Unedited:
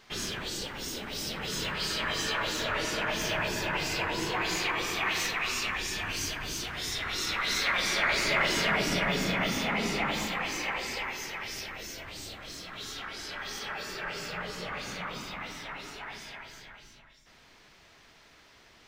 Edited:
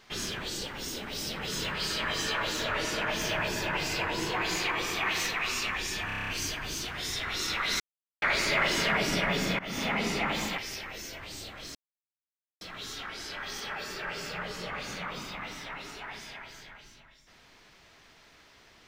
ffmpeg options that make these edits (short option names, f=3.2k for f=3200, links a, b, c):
-filter_complex "[0:a]asplit=13[a][b][c][d][e][f][g][h][i][j][k][l][m];[a]atrim=end=6.102[n];[b]atrim=start=6.068:end=6.102[o];[c]atrim=start=6.068:end=6.102[p];[d]atrim=start=6.068:end=6.102[q];[e]atrim=start=6.068:end=6.102[r];[f]atrim=start=6.068:end=6.102[s];[g]atrim=start=6.068:end=6.102[t];[h]atrim=start=6.068:end=7.59,asetpts=PTS-STARTPTS,afade=t=out:st=1.518:d=0.004:c=hsin[u];[i]atrim=start=7.59:end=8.01,asetpts=PTS-STARTPTS,volume=0[v];[j]atrim=start=8.01:end=9.38,asetpts=PTS-STARTPTS,afade=t=in:d=0.004:c=hsin,afade=t=out:st=1.366:d=0.004:c=hsin:silence=0.1[w];[k]atrim=start=9.38:end=10.372,asetpts=PTS-STARTPTS,afade=t=in:d=0.26:silence=0.1[x];[l]atrim=start=11.428:end=12.6,asetpts=PTS-STARTPTS,afade=t=out:st=1.168:d=0.004:c=hsin,apad=pad_dur=0.86[y];[m]atrim=start=12.6,asetpts=PTS-STARTPTS,afade=t=in:d=0.004:c=hsin[z];[n][o]acrossfade=d=0.004:c1=hsin:c2=hsin[aa];[aa][p]acrossfade=d=0.004:c1=hsin:c2=hsin[ab];[ab][q]acrossfade=d=0.004:c1=hsin:c2=hsin[ac];[ac][r]acrossfade=d=0.004:c1=hsin:c2=hsin[ad];[ad][s]acrossfade=d=0.004:c1=hsin:c2=hsin[ae];[ae][t]acrossfade=d=0.004:c1=hsin:c2=hsin[af];[u][v][w][x]concat=n=4:v=0:a=1[ag];[af][ag]acrossfade=d=0.004:c1=hsin:c2=hsin[ah];[y][z]concat=n=2:v=0:a=1[ai];[ah][ai]acrossfade=d=0.004:c1=hsin:c2=hsin"